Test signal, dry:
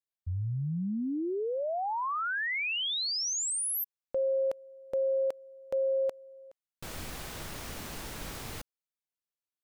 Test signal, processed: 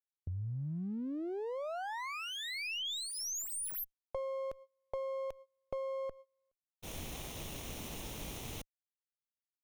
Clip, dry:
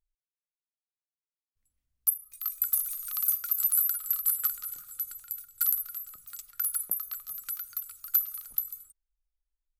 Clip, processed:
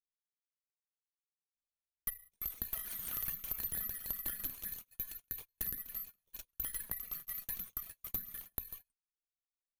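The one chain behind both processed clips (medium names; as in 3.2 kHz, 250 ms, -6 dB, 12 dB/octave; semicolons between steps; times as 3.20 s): comb filter that takes the minimum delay 0.31 ms; gate -43 dBFS, range -29 dB; compression 6:1, threshold -35 dBFS; trim -1.5 dB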